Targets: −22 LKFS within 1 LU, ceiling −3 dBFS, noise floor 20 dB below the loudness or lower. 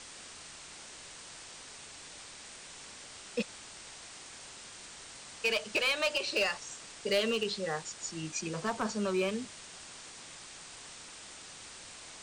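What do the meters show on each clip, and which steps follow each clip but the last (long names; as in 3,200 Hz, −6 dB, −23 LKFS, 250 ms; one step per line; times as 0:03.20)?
share of clipped samples 0.4%; peaks flattened at −23.5 dBFS; background noise floor −49 dBFS; target noise floor −56 dBFS; integrated loudness −36.0 LKFS; sample peak −23.5 dBFS; target loudness −22.0 LKFS
→ clipped peaks rebuilt −23.5 dBFS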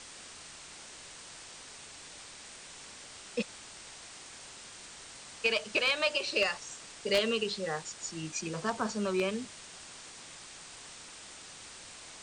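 share of clipped samples 0.0%; background noise floor −49 dBFS; target noise floor −52 dBFS
→ noise reduction from a noise print 6 dB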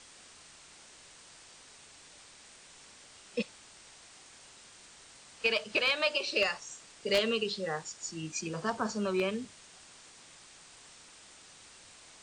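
background noise floor −55 dBFS; integrated loudness −32.0 LKFS; sample peak −14.5 dBFS; target loudness −22.0 LKFS
→ level +10 dB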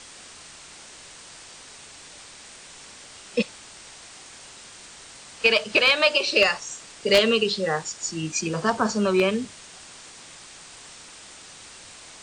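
integrated loudness −22.0 LKFS; sample peak −4.5 dBFS; background noise floor −45 dBFS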